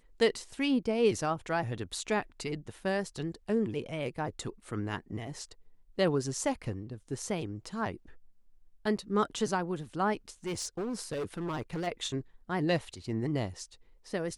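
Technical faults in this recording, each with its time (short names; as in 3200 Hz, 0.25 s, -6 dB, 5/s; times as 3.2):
10.46–11.88 clipped -31 dBFS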